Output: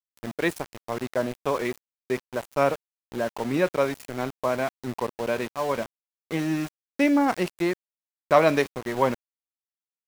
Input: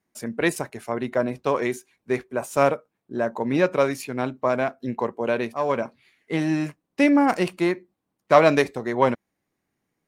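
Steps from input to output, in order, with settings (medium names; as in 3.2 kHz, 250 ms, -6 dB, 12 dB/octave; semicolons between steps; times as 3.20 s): treble shelf 11 kHz -3 dB; small samples zeroed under -29.5 dBFS; trim -3 dB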